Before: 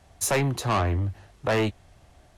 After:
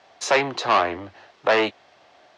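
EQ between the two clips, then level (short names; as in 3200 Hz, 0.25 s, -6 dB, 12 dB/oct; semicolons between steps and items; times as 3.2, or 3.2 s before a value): HPF 460 Hz 12 dB/oct; LPF 5200 Hz 24 dB/oct; +7.5 dB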